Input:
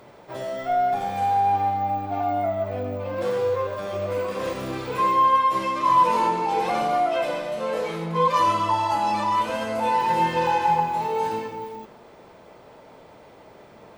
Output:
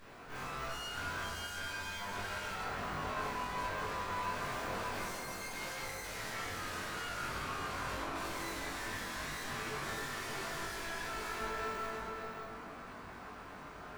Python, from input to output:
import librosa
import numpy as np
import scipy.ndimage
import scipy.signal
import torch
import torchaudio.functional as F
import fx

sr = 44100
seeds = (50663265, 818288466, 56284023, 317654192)

y = fx.peak_eq(x, sr, hz=340.0, db=-9.0, octaves=0.3)
y = np.abs(y)
y = fx.tube_stage(y, sr, drive_db=29.0, bias=0.55)
y = fx.doubler(y, sr, ms=21.0, db=-3.0)
y = y + 10.0 ** (-6.0 / 20.0) * np.pad(y, (int(582 * sr / 1000.0), 0))[:len(y)]
y = fx.rev_plate(y, sr, seeds[0], rt60_s=2.2, hf_ratio=0.25, predelay_ms=0, drr_db=-8.0)
y = y * 10.0 ** (-4.0 / 20.0)